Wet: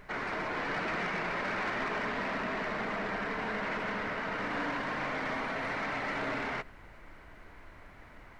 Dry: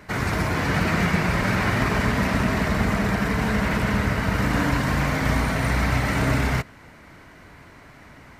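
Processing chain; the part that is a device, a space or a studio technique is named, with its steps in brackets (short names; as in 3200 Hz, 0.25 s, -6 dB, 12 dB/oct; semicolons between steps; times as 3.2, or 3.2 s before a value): aircraft cabin announcement (BPF 350–3100 Hz; soft clip -21 dBFS, distortion -17 dB; brown noise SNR 17 dB); gain -6 dB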